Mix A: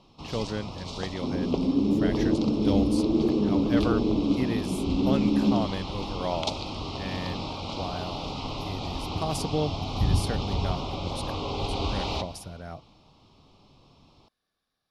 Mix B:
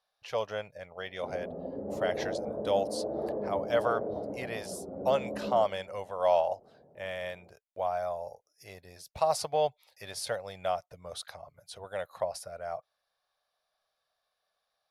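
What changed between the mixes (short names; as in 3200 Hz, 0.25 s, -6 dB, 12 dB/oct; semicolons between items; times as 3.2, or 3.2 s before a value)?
first sound: muted; master: add resonant low shelf 420 Hz -12.5 dB, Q 3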